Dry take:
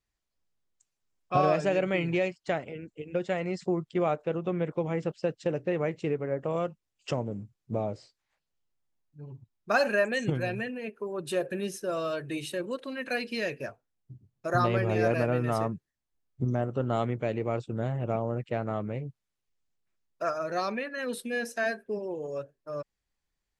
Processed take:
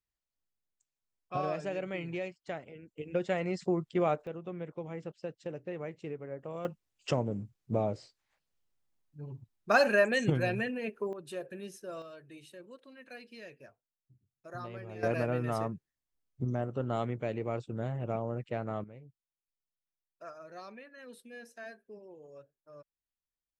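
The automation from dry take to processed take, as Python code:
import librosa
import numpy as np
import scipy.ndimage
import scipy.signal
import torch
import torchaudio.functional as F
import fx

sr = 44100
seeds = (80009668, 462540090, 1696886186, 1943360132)

y = fx.gain(x, sr, db=fx.steps((0.0, -9.5), (2.98, -1.5), (4.27, -10.5), (6.65, 0.5), (11.13, -10.5), (12.02, -17.0), (15.03, -4.5), (18.84, -16.5)))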